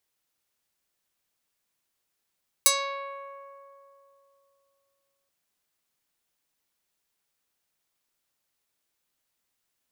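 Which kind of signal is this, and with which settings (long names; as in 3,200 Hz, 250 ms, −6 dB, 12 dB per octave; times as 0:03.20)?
Karplus-Strong string C#5, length 2.63 s, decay 3.08 s, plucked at 0.31, medium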